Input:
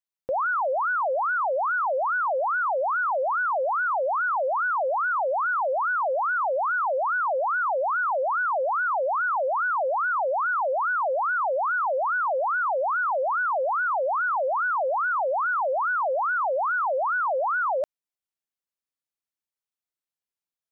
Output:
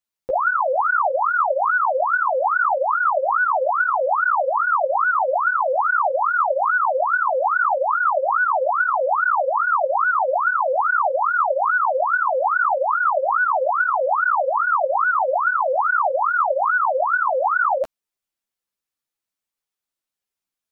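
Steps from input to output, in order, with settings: ensemble effect; gain +8.5 dB

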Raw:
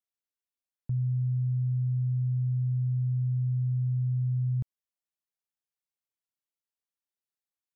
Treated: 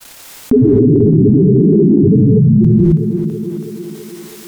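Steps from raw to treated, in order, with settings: bell 120 Hz -5 dB; grains 0.1 s, pitch spread up and down by 12 st; thinning echo 0.567 s, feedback 49%, high-pass 160 Hz, level -18.5 dB; non-linear reverb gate 0.49 s rising, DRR -3 dB; speed mistake 45 rpm record played at 78 rpm; maximiser +33.5 dB; fast leveller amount 50%; gain -3 dB

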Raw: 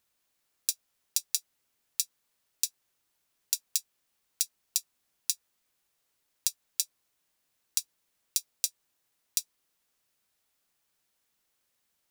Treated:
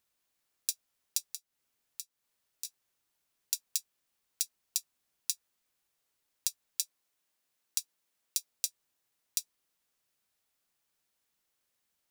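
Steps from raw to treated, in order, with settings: 1.22–2.65 compressor 3:1, threshold -37 dBFS, peak gain reduction 11 dB; 6.82–8.5 HPF 180 Hz 6 dB/oct; gain -3.5 dB

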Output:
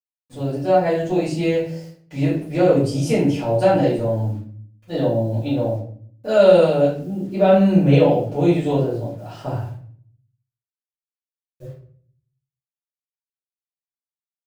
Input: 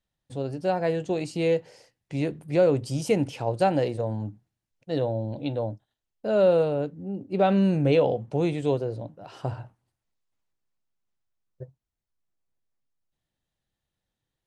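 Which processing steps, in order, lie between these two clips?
6.28–6.93 high shelf 2100 Hz +11.5 dB; bit-crush 10-bit; shoebox room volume 62 m³, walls mixed, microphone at 2.5 m; gain -5.5 dB

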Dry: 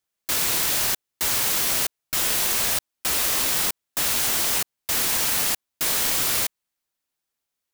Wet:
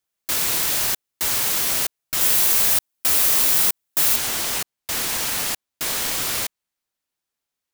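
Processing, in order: high shelf 8900 Hz +2 dB, from 2.21 s +8 dB, from 4.16 s -3 dB

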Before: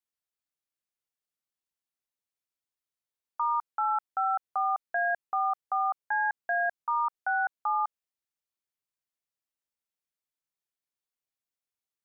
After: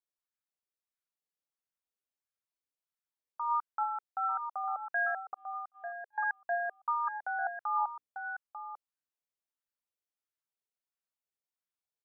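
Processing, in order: 3.83–4.64 low shelf 440 Hz -9.5 dB; 5.34–6.18 gate -23 dBFS, range -43 dB; 6.93–7.46 notches 60/120/180/240/300 Hz; echo 0.895 s -8.5 dB; LFO bell 1.5 Hz 430–1600 Hz +8 dB; gain -8 dB

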